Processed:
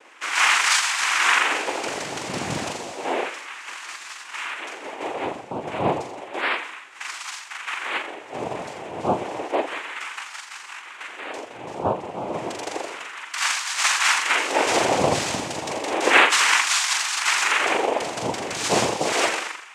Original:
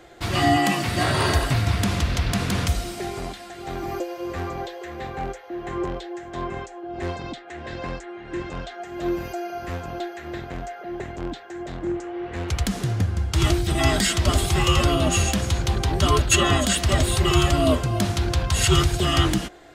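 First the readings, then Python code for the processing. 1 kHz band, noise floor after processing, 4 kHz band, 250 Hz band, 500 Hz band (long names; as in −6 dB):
+3.0 dB, −41 dBFS, +1.5 dB, −7.0 dB, 0.0 dB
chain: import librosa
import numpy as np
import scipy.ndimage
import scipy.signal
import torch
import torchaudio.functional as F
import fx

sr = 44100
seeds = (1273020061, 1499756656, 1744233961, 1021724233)

y = scipy.signal.sosfilt(scipy.signal.butter(2, 5400.0, 'lowpass', fs=sr, output='sos'), x)
y = fx.low_shelf(y, sr, hz=320.0, db=-12.0)
y = fx.room_flutter(y, sr, wall_m=7.2, rt60_s=0.68)
y = fx.filter_lfo_highpass(y, sr, shape='sine', hz=0.31, low_hz=290.0, high_hz=2500.0, q=5.4)
y = fx.noise_vocoder(y, sr, seeds[0], bands=4)
y = y * librosa.db_to_amplitude(-2.0)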